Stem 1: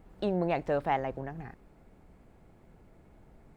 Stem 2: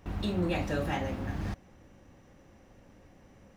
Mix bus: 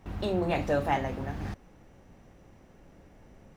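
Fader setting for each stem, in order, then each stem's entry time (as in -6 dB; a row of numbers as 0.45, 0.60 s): 0.0, -1.5 dB; 0.00, 0.00 s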